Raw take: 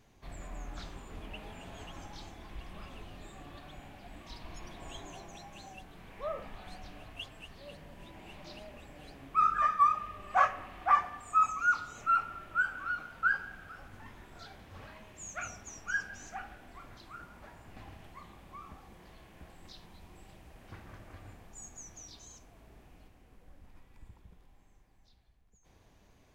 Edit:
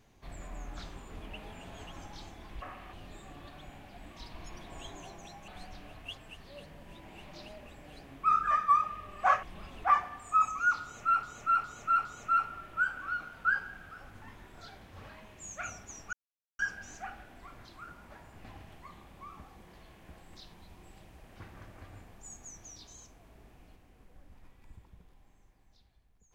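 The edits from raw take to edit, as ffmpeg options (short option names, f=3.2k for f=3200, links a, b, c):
-filter_complex "[0:a]asplit=10[a][b][c][d][e][f][g][h][i][j];[a]atrim=end=2.622[k];[b]atrim=start=10.538:end=10.852[l];[c]atrim=start=3.028:end=5.582[m];[d]atrim=start=6.588:end=10.542[n];[e]atrim=start=2.618:end=3.032[o];[f]atrim=start=10.848:end=12.242[p];[g]atrim=start=11.828:end=12.242[q];[h]atrim=start=11.828:end=12.242[r];[i]atrim=start=11.828:end=15.91,asetpts=PTS-STARTPTS,afade=t=out:st=4.078:d=0.004:c=hsin,apad=pad_dur=0.46[s];[j]atrim=start=15.91,asetpts=PTS-STARTPTS,afade=t=in:d=0.004:c=hsin[t];[k][l]acrossfade=d=0.004:c1=hsin:c2=hsin[u];[u][m]acrossfade=d=0.004:c1=hsin:c2=hsin[v];[v][n]acrossfade=d=0.004:c1=hsin:c2=hsin[w];[w][o]acrossfade=d=0.004:c1=hsin:c2=hsin[x];[x][p]acrossfade=d=0.004:c1=hsin:c2=hsin[y];[y][q]acrossfade=d=0.004:c1=hsin:c2=hsin[z];[z][r]acrossfade=d=0.004:c1=hsin:c2=hsin[aa];[s][t]concat=n=2:v=0:a=1[ab];[aa][ab]acrossfade=d=0.004:c1=hsin:c2=hsin"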